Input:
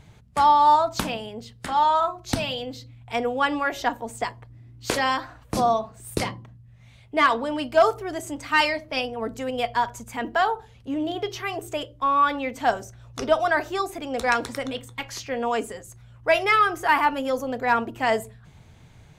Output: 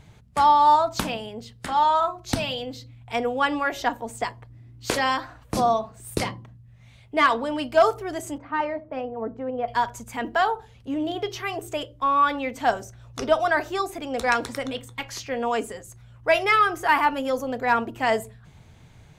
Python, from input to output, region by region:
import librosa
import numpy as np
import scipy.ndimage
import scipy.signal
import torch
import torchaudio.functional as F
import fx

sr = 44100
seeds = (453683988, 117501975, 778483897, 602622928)

y = fx.chain(x, sr, fx.self_delay(depth_ms=0.059),
    fx.lowpass(hz=1000.0, slope=12),
    fx.low_shelf(hz=80.0, db=-10.0), at=(8.38, 9.68))